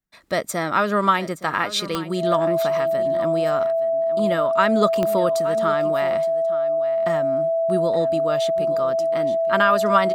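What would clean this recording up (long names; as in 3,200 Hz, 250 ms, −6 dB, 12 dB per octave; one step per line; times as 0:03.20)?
click removal
notch filter 660 Hz, Q 30
echo removal 870 ms −15 dB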